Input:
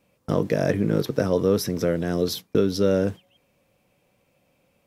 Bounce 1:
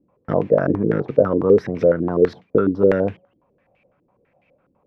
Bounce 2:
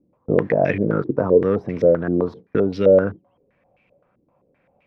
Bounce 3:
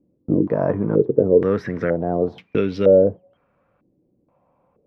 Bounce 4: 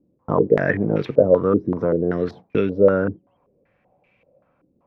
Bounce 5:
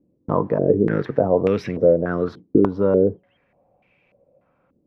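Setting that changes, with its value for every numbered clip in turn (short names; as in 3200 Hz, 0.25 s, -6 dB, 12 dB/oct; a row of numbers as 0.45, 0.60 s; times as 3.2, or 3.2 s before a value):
stepped low-pass, rate: 12, 7.7, 2.1, 5.2, 3.4 Hz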